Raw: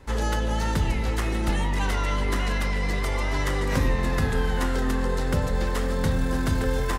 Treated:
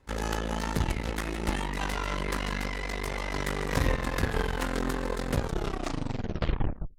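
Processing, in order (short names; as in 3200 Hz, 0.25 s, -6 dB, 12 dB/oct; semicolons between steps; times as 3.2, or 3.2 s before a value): tape stop at the end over 1.70 s; added harmonics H 3 -12 dB, 4 -17 dB, 5 -38 dB, 7 -38 dB, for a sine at -12 dBFS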